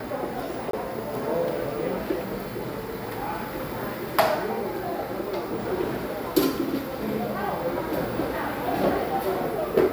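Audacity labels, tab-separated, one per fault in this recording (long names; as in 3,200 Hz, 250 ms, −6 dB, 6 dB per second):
0.710000	0.730000	drop-out 23 ms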